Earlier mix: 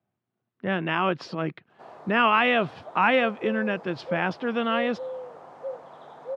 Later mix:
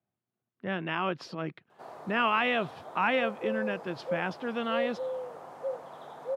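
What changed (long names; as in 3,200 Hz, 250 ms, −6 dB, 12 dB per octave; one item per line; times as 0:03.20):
speech −6.5 dB
master: remove high-frequency loss of the air 64 metres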